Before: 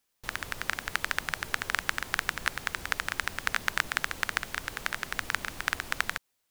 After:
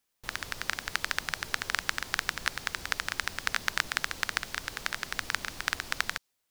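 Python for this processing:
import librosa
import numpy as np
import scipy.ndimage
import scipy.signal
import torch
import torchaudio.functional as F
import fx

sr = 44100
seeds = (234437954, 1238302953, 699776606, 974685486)

y = fx.dynamic_eq(x, sr, hz=4900.0, q=1.2, threshold_db=-52.0, ratio=4.0, max_db=6)
y = y * librosa.db_to_amplitude(-2.0)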